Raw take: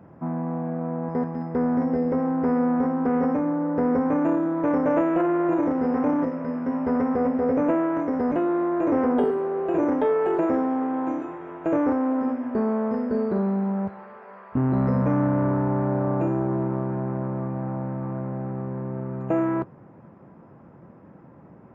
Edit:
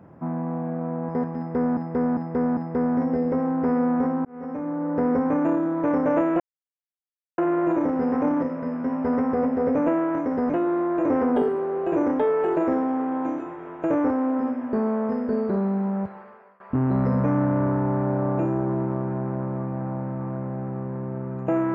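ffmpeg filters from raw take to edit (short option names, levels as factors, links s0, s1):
-filter_complex "[0:a]asplit=7[s0][s1][s2][s3][s4][s5][s6];[s0]atrim=end=1.772[s7];[s1]atrim=start=1.368:end=1.772[s8];[s2]atrim=start=1.368:end=1.772[s9];[s3]atrim=start=1.368:end=3.05,asetpts=PTS-STARTPTS,afade=t=out:st=1.678:d=0.004:c=hsin[s10];[s4]atrim=start=3.05:end=5.2,asetpts=PTS-STARTPTS,afade=t=in:d=0.71,afade=t=out:st=2.146:d=0.004:c=hsin,apad=pad_dur=0.98[s11];[s5]atrim=start=5.2:end=14.42,asetpts=PTS-STARTPTS,afade=t=in:d=0.004:c=hsin,afade=t=out:st=8.78:d=0.44:silence=0.0891251[s12];[s6]atrim=start=14.42,asetpts=PTS-STARTPTS,afade=t=in:d=0.004:c=hsin:silence=0.0891251[s13];[s7][s8]acrossfade=d=0.004:c1=hsin:c2=hsin[s14];[s14][s9]acrossfade=d=0.004:c1=hsin:c2=hsin[s15];[s10][s11][s12][s13]concat=n=4:v=0:a=1[s16];[s15][s16]acrossfade=d=0.004:c1=hsin:c2=hsin"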